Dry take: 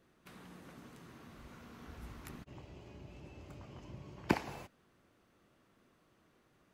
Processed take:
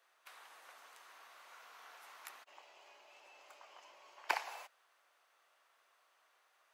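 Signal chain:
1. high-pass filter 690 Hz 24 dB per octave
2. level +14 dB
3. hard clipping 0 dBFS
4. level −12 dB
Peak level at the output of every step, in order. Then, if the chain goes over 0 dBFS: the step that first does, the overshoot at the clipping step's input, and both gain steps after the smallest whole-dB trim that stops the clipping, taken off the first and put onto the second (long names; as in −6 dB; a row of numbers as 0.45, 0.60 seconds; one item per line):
−18.5, −4.5, −4.5, −16.5 dBFS
no step passes full scale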